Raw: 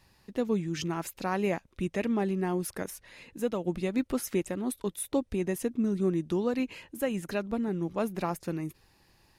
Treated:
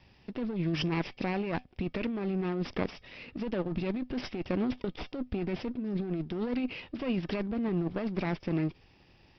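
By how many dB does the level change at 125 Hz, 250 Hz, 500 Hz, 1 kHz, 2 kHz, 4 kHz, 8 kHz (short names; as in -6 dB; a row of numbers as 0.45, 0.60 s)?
+1.0 dB, -1.5 dB, -4.0 dB, -4.0 dB, -0.5 dB, +2.0 dB, under -20 dB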